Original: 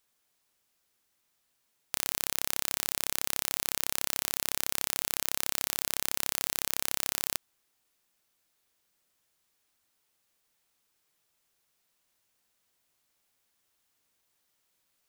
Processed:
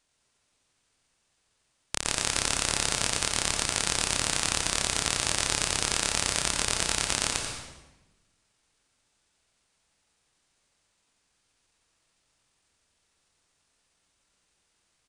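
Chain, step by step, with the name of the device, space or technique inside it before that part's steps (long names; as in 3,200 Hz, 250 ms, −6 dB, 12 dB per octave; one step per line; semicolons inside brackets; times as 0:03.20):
monster voice (pitch shifter −8 semitones; formants moved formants −5.5 semitones; low-shelf EQ 110 Hz +8.5 dB; single-tap delay 87 ms −9 dB; convolution reverb RT60 1.1 s, pre-delay 103 ms, DRR 3 dB)
level +1 dB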